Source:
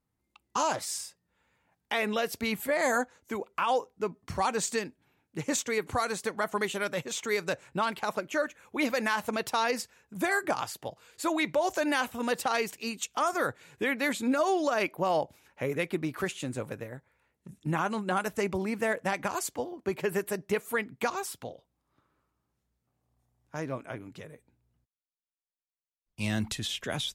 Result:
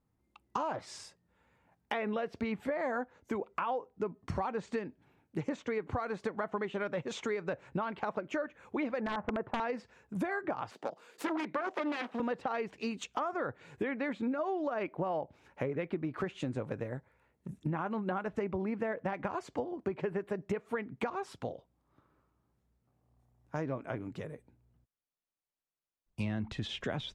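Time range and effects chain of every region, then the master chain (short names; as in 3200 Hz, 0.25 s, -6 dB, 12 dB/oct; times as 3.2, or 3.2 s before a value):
9–9.6 LPF 1600 Hz 24 dB/oct + wrapped overs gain 21 dB
10.71–12.2 self-modulated delay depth 0.56 ms + HPF 210 Hz 24 dB/oct
whole clip: treble ducked by the level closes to 2800 Hz, closed at -27.5 dBFS; high shelf 2000 Hz -11 dB; compressor, threshold -36 dBFS; gain +4.5 dB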